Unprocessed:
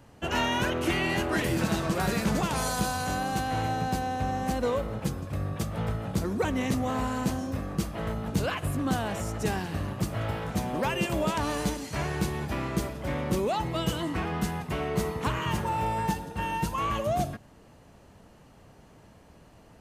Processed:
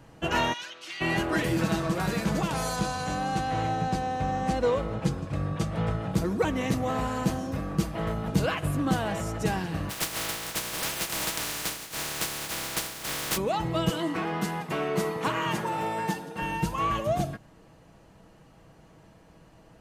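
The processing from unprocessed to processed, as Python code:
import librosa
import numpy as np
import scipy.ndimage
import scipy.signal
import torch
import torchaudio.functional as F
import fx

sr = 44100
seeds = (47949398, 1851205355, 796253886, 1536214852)

y = fx.bandpass_q(x, sr, hz=4600.0, q=1.7, at=(0.52, 1.0), fade=0.02)
y = fx.lowpass(y, sr, hz=8700.0, slope=12, at=(2.76, 6.12))
y = fx.spec_flatten(y, sr, power=0.14, at=(9.89, 13.36), fade=0.02)
y = fx.highpass(y, sr, hz=210.0, slope=12, at=(13.9, 16.42))
y = fx.rider(y, sr, range_db=10, speed_s=2.0)
y = fx.high_shelf(y, sr, hz=6900.0, db=-4.0)
y = y + 0.38 * np.pad(y, (int(6.2 * sr / 1000.0), 0))[:len(y)]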